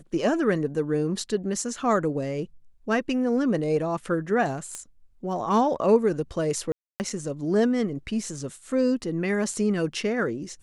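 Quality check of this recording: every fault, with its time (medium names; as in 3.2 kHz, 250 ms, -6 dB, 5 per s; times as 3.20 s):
4.75 s: pop -20 dBFS
6.72–7.00 s: dropout 279 ms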